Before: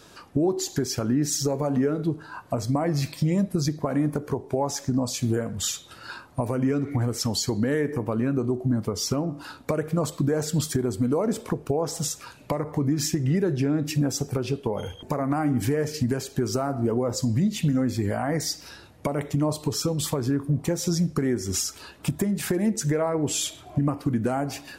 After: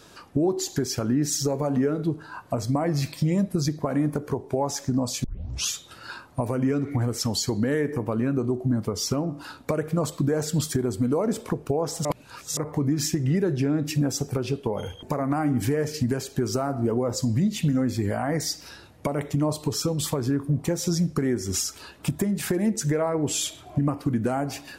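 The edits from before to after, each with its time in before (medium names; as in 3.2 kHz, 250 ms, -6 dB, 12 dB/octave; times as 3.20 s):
5.24 s: tape start 0.47 s
12.05–12.57 s: reverse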